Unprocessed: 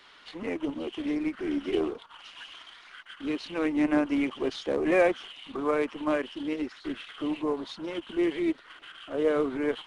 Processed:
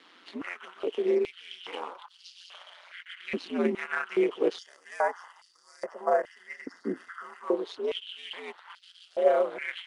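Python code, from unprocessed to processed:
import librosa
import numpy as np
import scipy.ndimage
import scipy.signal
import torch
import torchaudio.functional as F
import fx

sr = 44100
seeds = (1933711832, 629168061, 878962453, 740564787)

y = x * np.sin(2.0 * np.pi * 89.0 * np.arange(len(x)) / sr)
y = fx.spec_box(y, sr, start_s=4.58, length_s=2.86, low_hz=2100.0, high_hz=4500.0, gain_db=-18)
y = fx.filter_held_highpass(y, sr, hz=2.4, low_hz=270.0, high_hz=4700.0)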